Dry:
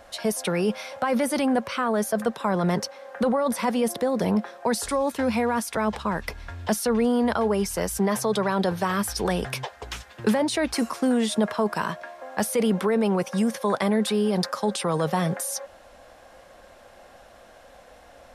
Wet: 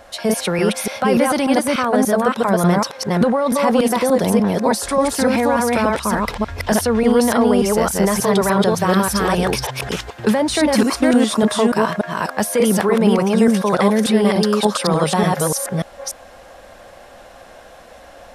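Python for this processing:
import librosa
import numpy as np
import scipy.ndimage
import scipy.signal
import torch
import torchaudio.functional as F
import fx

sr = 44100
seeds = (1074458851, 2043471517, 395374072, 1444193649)

y = fx.reverse_delay(x, sr, ms=293, wet_db=-0.5)
y = y * librosa.db_to_amplitude(5.5)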